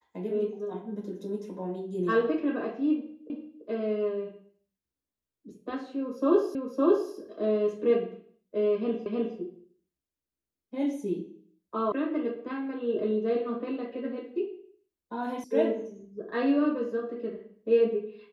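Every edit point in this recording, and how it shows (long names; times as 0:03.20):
0:03.30: the same again, the last 0.34 s
0:06.55: the same again, the last 0.56 s
0:09.06: the same again, the last 0.31 s
0:11.92: cut off before it has died away
0:15.44: cut off before it has died away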